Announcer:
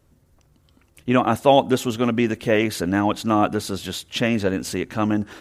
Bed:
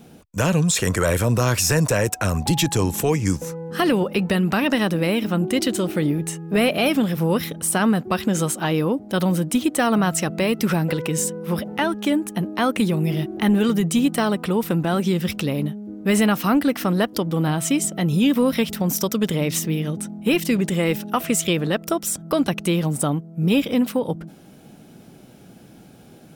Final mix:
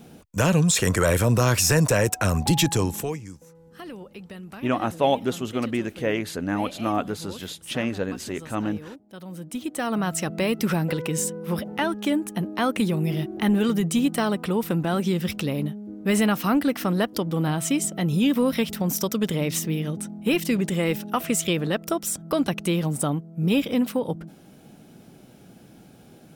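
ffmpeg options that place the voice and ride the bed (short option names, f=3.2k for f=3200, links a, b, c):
-filter_complex "[0:a]adelay=3550,volume=-6dB[a];[1:a]volume=16.5dB,afade=t=out:st=2.66:d=0.61:silence=0.105925,afade=t=in:st=9.25:d=1.17:silence=0.141254[b];[a][b]amix=inputs=2:normalize=0"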